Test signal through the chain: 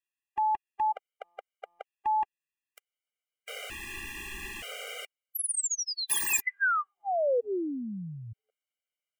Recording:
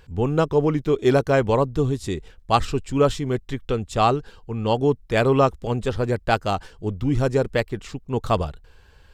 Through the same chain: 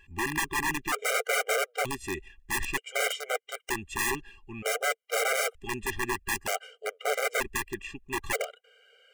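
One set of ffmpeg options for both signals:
ffmpeg -i in.wav -af "equalizer=frequency=2900:width_type=o:width=0.56:gain=14,bandreject=frequency=950:width=5,aeval=exprs='(mod(5.96*val(0)+1,2)-1)/5.96':channel_layout=same,equalizer=frequency=125:width_type=o:width=1:gain=-10,equalizer=frequency=250:width_type=o:width=1:gain=-3,equalizer=frequency=500:width_type=o:width=1:gain=7,equalizer=frequency=2000:width_type=o:width=1:gain=10,equalizer=frequency=4000:width_type=o:width=1:gain=-7,equalizer=frequency=8000:width_type=o:width=1:gain=5,afftfilt=real='re*gt(sin(2*PI*0.54*pts/sr)*(1-2*mod(floor(b*sr/1024/400),2)),0)':imag='im*gt(sin(2*PI*0.54*pts/sr)*(1-2*mod(floor(b*sr/1024/400),2)),0)':win_size=1024:overlap=0.75,volume=-7dB" out.wav

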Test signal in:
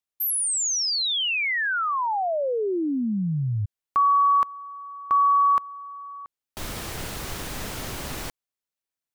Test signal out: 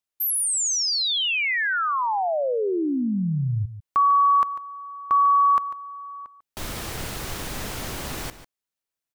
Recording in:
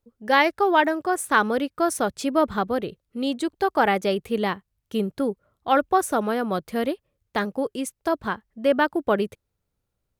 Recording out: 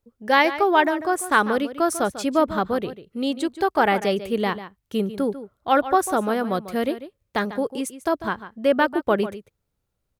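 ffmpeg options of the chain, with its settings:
ffmpeg -i in.wav -filter_complex "[0:a]asplit=2[link_01][link_02];[link_02]adelay=145.8,volume=-13dB,highshelf=frequency=4000:gain=-3.28[link_03];[link_01][link_03]amix=inputs=2:normalize=0,volume=1dB" out.wav

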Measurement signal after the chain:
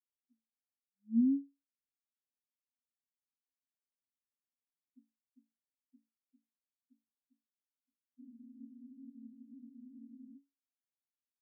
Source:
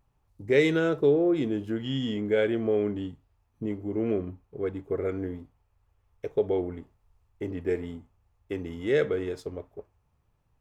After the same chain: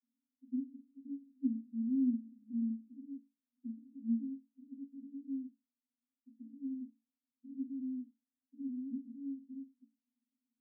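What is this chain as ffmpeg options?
ffmpeg -i in.wav -af "asuperpass=centerf=250:order=20:qfactor=4.5,volume=1dB" out.wav

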